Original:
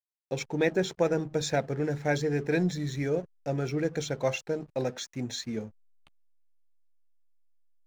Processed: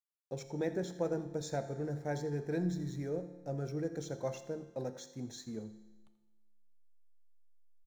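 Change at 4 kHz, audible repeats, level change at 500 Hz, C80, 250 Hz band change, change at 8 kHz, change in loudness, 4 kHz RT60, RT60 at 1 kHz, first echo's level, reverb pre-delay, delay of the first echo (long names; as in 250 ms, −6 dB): −14.0 dB, 1, −8.5 dB, 12.5 dB, −7.5 dB, −10.0 dB, −8.5 dB, 1.2 s, 1.3 s, −16.5 dB, 6 ms, 84 ms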